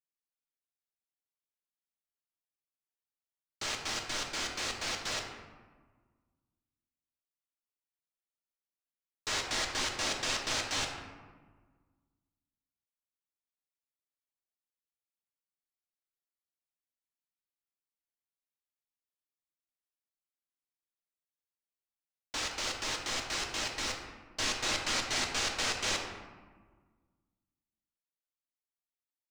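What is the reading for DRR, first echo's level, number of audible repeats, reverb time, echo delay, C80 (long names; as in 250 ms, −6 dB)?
1.0 dB, no echo audible, no echo audible, 1.5 s, no echo audible, 6.5 dB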